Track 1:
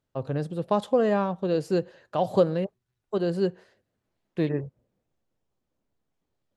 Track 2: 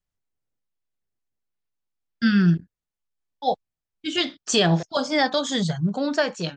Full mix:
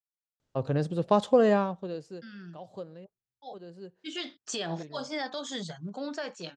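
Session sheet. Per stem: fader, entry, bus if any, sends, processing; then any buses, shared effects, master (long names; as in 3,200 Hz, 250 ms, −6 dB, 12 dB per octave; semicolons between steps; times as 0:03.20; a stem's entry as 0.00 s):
+1.0 dB, 0.40 s, no send, low-pass with resonance 6,900 Hz, resonance Q 1.5; automatic ducking −21 dB, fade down 0.70 s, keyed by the second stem
0:03.28 −22.5 dB → 0:04.04 −10 dB, 0.00 s, no send, high-pass filter 230 Hz; brickwall limiter −14 dBFS, peak gain reduction 6.5 dB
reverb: not used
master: no processing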